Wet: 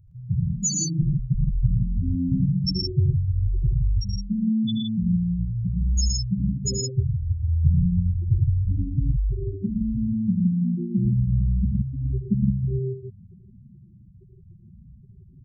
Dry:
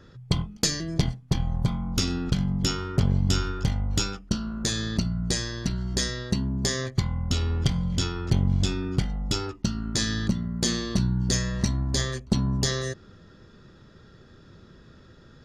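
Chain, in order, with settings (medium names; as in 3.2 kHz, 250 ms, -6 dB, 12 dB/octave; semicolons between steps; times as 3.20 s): loudest bins only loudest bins 2; treble shelf 3.5 kHz +12 dB; loudspeakers at several distances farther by 27 m -8 dB, 39 m -3 dB, 56 m -4 dB; trim +6 dB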